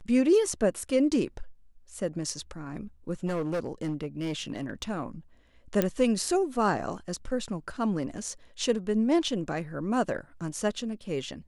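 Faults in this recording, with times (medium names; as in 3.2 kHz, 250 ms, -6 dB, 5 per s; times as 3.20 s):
3.26–4.91 s: clipped -26 dBFS
5.82 s: pop -11 dBFS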